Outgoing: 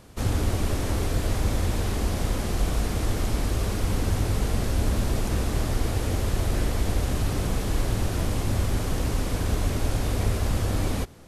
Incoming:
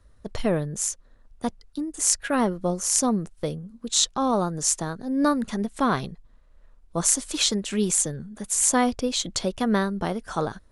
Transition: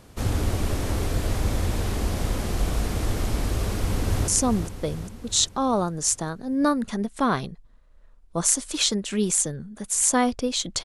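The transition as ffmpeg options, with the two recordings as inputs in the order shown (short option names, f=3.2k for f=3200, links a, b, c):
-filter_complex "[0:a]apad=whole_dur=10.84,atrim=end=10.84,atrim=end=4.282[a];[1:a]atrim=start=2.878:end=9.44[b];[a][b]acrossfade=d=0.004:c1=hsin:c2=hsin,asplit=2[c][d];[d]afade=t=in:st=3.69:d=0.01,afade=t=out:st=4.28:d=0.01,aecho=0:1:400|800|1200|1600|2000|2400|2800:0.446684|0.245676|0.135122|0.074317|0.0408743|0.0224809|0.0123645[e];[c][e]amix=inputs=2:normalize=0"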